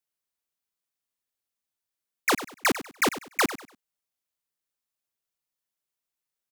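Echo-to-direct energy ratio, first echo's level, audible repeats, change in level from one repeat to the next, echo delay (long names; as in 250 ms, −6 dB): −13.0 dB, −13.5 dB, 2, −11.0 dB, 97 ms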